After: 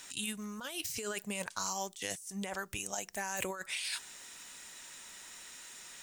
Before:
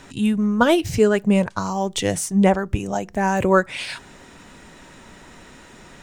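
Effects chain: pre-emphasis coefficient 0.97; negative-ratio compressor -40 dBFS, ratio -1; gain +1 dB

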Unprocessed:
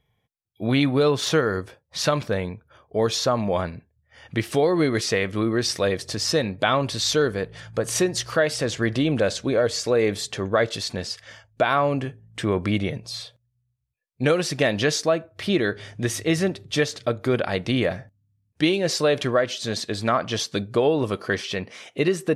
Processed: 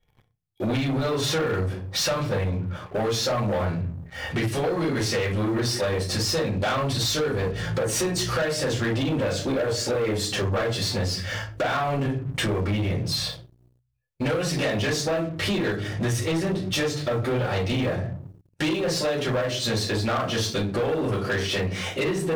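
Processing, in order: shoebox room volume 140 m³, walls furnished, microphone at 4.4 m; compressor 4:1, threshold -26 dBFS, peak gain reduction 18.5 dB; sample leveller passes 3; gain -6 dB

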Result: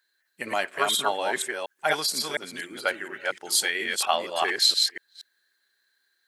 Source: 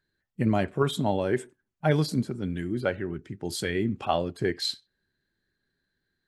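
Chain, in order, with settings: reverse delay 0.237 s, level -2.5 dB; HPF 920 Hz 12 dB/oct; high shelf 5300 Hz +8 dB; gain +6.5 dB

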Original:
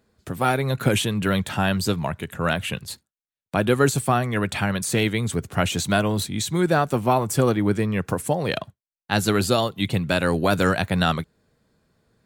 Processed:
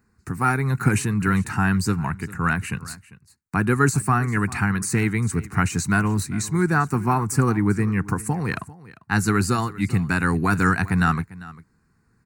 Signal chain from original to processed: bell 13000 Hz -13.5 dB 0.3 oct; fixed phaser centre 1400 Hz, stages 4; on a send: echo 0.397 s -19 dB; on the sum: gain +3.5 dB

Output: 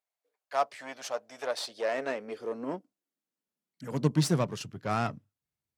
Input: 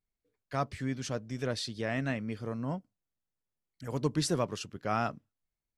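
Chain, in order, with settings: added harmonics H 8 -22 dB, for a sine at -16.5 dBFS; high-pass sweep 670 Hz -> 100 Hz, 1.44–4.97

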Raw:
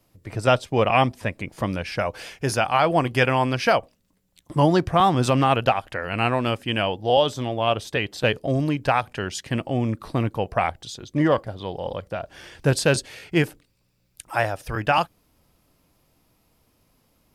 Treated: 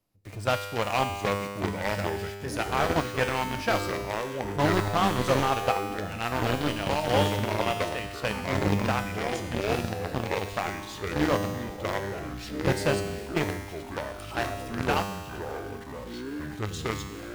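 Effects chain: echoes that change speed 0.647 s, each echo -4 st, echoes 3; in parallel at -3.5 dB: companded quantiser 2-bit; on the sum: resonator 100 Hz, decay 1.5 s, harmonics all, mix 80%; slew limiter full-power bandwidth 260 Hz; gain -2.5 dB

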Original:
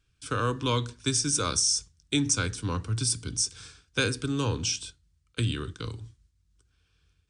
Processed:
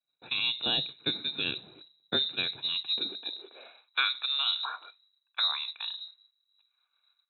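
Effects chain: inverted band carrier 3900 Hz; high-pass sweep 130 Hz -> 1200 Hz, 2.87–4.01; expander -59 dBFS; gain -3 dB

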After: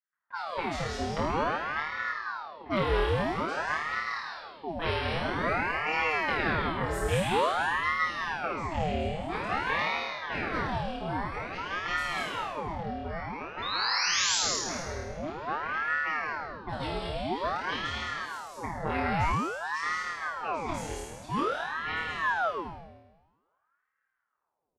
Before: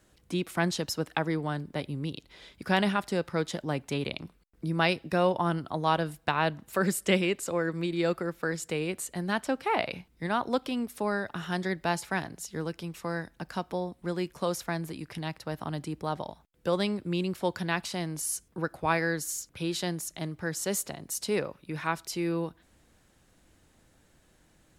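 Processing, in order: gate -59 dBFS, range -29 dB; low-pass opened by the level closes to 820 Hz, open at -23.5 dBFS; high shelf 4400 Hz -9 dB; notch 960 Hz; comb 6.5 ms, depth 88%; painted sound rise, 13.62–14.36, 2300–6600 Hz -26 dBFS; on a send: flutter echo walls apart 4.5 m, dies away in 1.2 s; on the sum: non-linear reverb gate 0.24 s rising, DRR 0 dB; ring modulator with a swept carrier 920 Hz, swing 75%, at 0.5 Hz; gain -7.5 dB

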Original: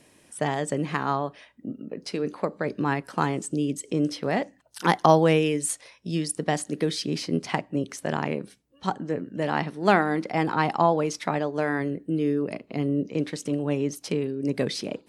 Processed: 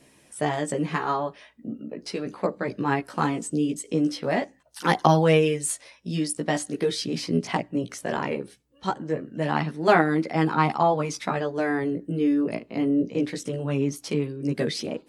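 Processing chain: chorus voices 2, 0.2 Hz, delay 15 ms, depth 2.5 ms; gain +3.5 dB

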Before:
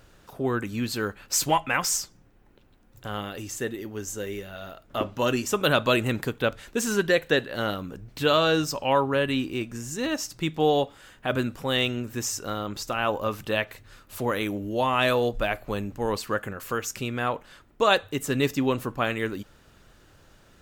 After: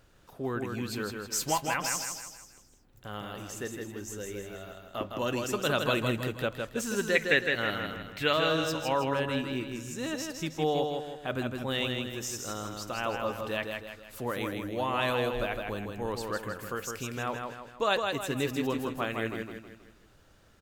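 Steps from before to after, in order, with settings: 7.15–8.33 bell 2100 Hz +13.5 dB 0.77 oct; feedback echo 0.16 s, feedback 44%, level -4.5 dB; gain -7 dB

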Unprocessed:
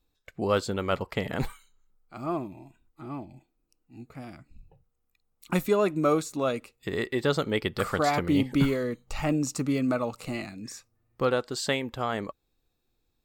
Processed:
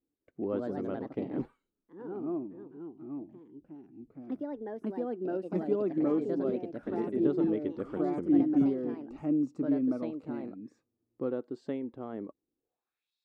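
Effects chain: echoes that change speed 0.196 s, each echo +3 st, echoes 2; band-pass sweep 300 Hz -> 4100 Hz, 12.56–13.14

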